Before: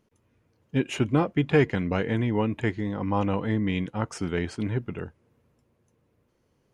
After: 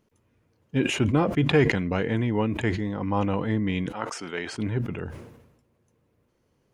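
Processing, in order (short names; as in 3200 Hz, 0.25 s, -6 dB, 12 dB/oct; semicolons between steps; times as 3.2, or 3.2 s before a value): 3.92–4.53 weighting filter A; sustainer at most 58 dB/s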